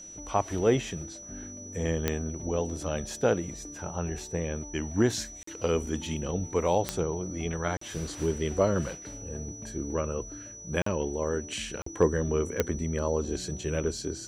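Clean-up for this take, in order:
click removal
notch filter 5,900 Hz, Q 30
repair the gap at 0:05.43/0:07.77/0:10.82/0:11.82, 44 ms

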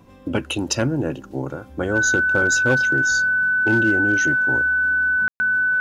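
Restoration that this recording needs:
clipped peaks rebuilt −10.5 dBFS
notch filter 1,500 Hz, Q 30
ambience match 0:05.28–0:05.40

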